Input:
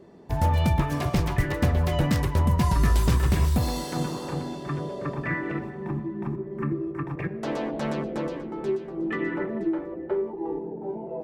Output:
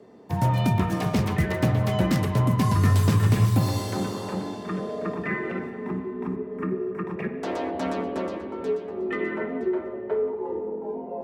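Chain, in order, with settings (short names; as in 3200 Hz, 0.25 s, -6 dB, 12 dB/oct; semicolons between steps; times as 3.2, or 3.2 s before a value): spring tank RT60 2.2 s, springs 46/56 ms, chirp 60 ms, DRR 9 dB; frequency shift +41 Hz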